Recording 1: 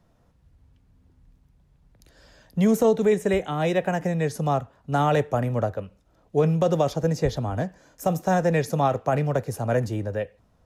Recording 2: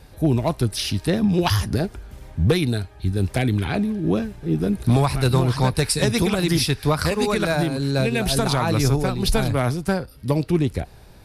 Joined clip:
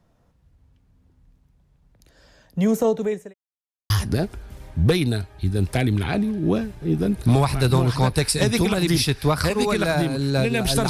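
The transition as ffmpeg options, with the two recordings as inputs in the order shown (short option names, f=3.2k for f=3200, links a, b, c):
-filter_complex "[0:a]apad=whole_dur=10.89,atrim=end=10.89,asplit=2[a][b];[a]atrim=end=3.34,asetpts=PTS-STARTPTS,afade=t=out:st=2.73:d=0.61:c=qsin[c];[b]atrim=start=3.34:end=3.9,asetpts=PTS-STARTPTS,volume=0[d];[1:a]atrim=start=1.51:end=8.5,asetpts=PTS-STARTPTS,afade=t=in:d=0.004:c=hsin[e];[c][d][e]concat=n=3:v=0:a=1"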